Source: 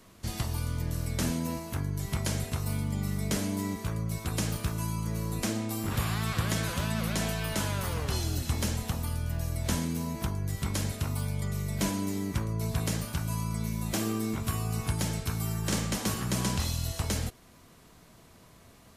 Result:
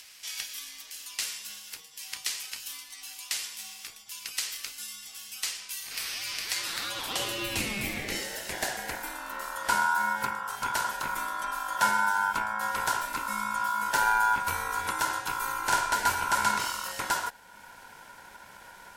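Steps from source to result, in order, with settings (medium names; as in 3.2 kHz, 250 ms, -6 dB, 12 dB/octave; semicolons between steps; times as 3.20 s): high-pass sweep 3.6 kHz -> 230 Hz, 6.43–9.45 s; upward compressor, threshold -44 dBFS; ring modulator 1.2 kHz; trim +4.5 dB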